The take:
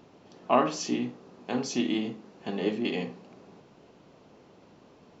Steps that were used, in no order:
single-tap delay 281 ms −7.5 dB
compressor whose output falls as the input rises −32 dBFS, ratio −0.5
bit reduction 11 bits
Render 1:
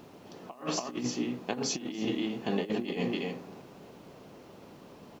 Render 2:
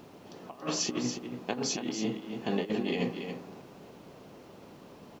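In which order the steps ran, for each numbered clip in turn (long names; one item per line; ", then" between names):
single-tap delay, then compressor whose output falls as the input rises, then bit reduction
compressor whose output falls as the input rises, then single-tap delay, then bit reduction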